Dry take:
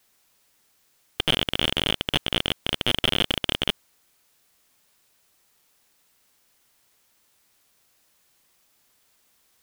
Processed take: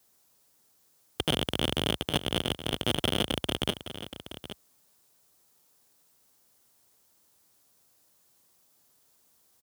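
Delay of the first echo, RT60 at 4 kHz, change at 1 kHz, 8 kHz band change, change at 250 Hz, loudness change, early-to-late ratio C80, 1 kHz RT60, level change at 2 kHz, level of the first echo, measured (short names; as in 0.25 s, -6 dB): 0.822 s, none, -2.5 dB, -1.0 dB, 0.0 dB, -6.0 dB, none, none, -7.5 dB, -12.5 dB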